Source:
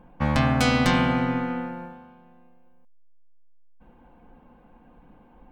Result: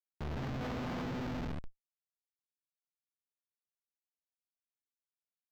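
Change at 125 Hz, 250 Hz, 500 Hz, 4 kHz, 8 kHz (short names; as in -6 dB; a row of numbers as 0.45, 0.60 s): -15.0, -16.5, -15.0, -20.0, -22.0 dB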